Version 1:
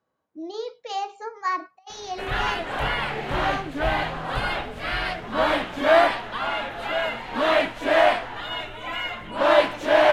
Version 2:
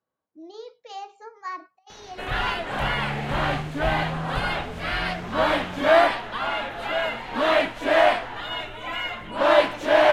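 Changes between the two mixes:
speech -8.0 dB; second sound +9.0 dB

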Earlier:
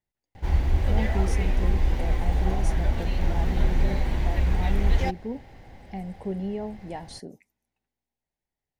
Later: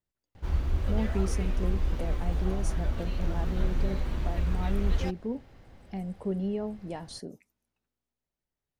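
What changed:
background -5.5 dB; master: add graphic EQ with 31 bands 800 Hz -7 dB, 1.25 kHz +7 dB, 2 kHz -6 dB

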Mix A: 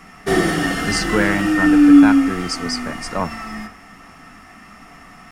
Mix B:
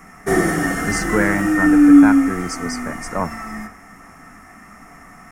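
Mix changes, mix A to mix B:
background: add treble shelf 10 kHz +5.5 dB; master: add high-order bell 3.6 kHz -12 dB 1.1 oct

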